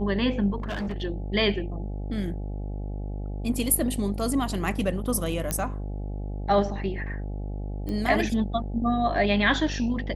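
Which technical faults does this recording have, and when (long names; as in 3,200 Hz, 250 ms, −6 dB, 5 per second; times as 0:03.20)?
mains buzz 50 Hz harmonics 17 −32 dBFS
0:00.58–0:01.02: clipping −27 dBFS
0:05.51: click −12 dBFS
0:07.89: click −21 dBFS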